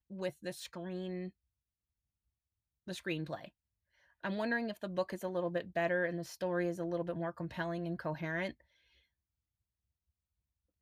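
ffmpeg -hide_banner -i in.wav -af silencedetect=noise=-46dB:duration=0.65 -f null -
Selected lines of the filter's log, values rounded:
silence_start: 1.29
silence_end: 2.87 | silence_duration: 1.58
silence_start: 3.48
silence_end: 4.24 | silence_duration: 0.76
silence_start: 8.51
silence_end: 10.82 | silence_duration: 2.31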